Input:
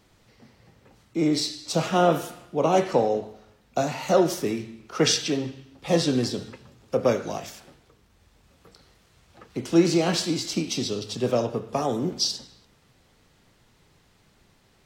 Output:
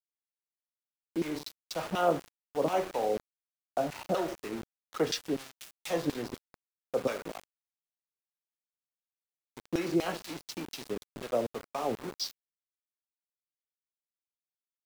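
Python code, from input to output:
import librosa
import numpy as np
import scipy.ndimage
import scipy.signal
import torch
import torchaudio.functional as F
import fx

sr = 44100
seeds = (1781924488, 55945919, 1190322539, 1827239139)

y = fx.crossing_spikes(x, sr, level_db=-19.0, at=(5.39, 6.0))
y = fx.filter_lfo_bandpass(y, sr, shape='saw_down', hz=4.1, low_hz=240.0, high_hz=2900.0, q=0.72)
y = np.where(np.abs(y) >= 10.0 ** (-33.5 / 20.0), y, 0.0)
y = y * librosa.db_to_amplitude(-4.5)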